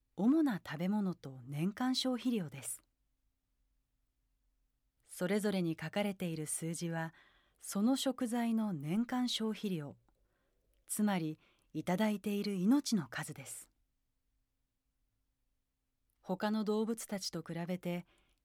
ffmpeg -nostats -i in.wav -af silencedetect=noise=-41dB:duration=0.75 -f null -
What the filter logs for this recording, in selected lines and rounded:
silence_start: 2.75
silence_end: 5.13 | silence_duration: 2.38
silence_start: 9.91
silence_end: 10.90 | silence_duration: 0.99
silence_start: 13.59
silence_end: 16.29 | silence_duration: 2.70